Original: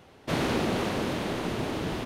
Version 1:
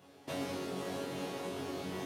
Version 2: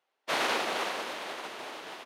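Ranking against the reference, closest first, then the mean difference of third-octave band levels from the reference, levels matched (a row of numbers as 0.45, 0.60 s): 1, 2; 3.5, 8.5 dB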